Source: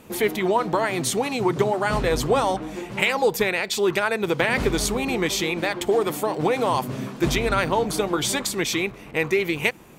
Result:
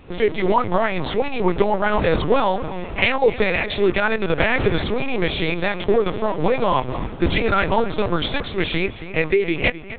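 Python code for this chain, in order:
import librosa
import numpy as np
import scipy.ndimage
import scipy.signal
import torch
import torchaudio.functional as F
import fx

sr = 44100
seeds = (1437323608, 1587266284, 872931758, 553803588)

y = fx.echo_tape(x, sr, ms=259, feedback_pct=36, wet_db=-12.0, lp_hz=2900.0, drive_db=9.0, wow_cents=33)
y = fx.lpc_vocoder(y, sr, seeds[0], excitation='pitch_kept', order=10)
y = y * librosa.db_to_amplitude(3.5)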